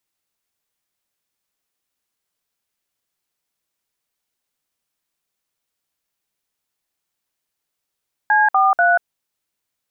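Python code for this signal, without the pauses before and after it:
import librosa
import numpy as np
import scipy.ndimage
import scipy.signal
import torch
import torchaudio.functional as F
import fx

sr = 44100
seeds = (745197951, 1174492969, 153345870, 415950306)

y = fx.dtmf(sr, digits='C43', tone_ms=187, gap_ms=57, level_db=-14.0)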